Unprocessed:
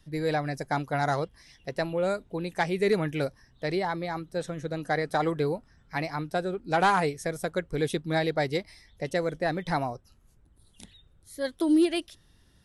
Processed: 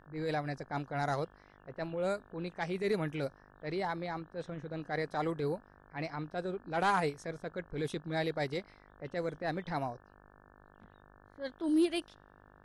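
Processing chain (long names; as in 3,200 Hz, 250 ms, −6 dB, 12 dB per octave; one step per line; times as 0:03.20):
transient designer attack −8 dB, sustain −3 dB
low-pass that shuts in the quiet parts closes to 1,200 Hz, open at −24.5 dBFS
hum with harmonics 50 Hz, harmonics 35, −56 dBFS −1 dB per octave
level −5 dB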